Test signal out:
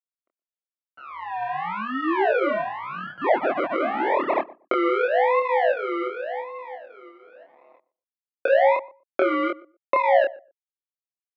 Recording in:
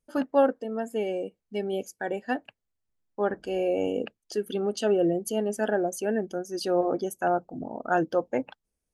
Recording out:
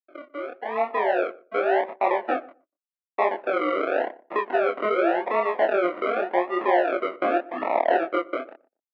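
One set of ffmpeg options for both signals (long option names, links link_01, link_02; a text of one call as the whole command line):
ffmpeg -i in.wav -filter_complex "[0:a]equalizer=frequency=490:width_type=o:width=1.9:gain=4.5,acrusher=bits=9:mix=0:aa=0.000001,acompressor=threshold=-27dB:ratio=10,acrusher=samples=40:mix=1:aa=0.000001:lfo=1:lforange=24:lforate=0.88,flanger=delay=22.5:depth=5.8:speed=0.85,dynaudnorm=framelen=150:gausssize=9:maxgain=15dB,highpass=frequency=380:width=0.5412,highpass=frequency=380:width=1.3066,equalizer=frequency=450:width_type=q:width=4:gain=-9,equalizer=frequency=680:width_type=q:width=4:gain=4,equalizer=frequency=1600:width_type=q:width=4:gain=-4,lowpass=frequency=2100:width=0.5412,lowpass=frequency=2100:width=1.3066,asplit=2[link_01][link_02];[link_02]adelay=120,lowpass=frequency=930:poles=1,volume=-19dB,asplit=2[link_03][link_04];[link_04]adelay=120,lowpass=frequency=930:poles=1,volume=0.17[link_05];[link_01][link_03][link_05]amix=inputs=3:normalize=0" out.wav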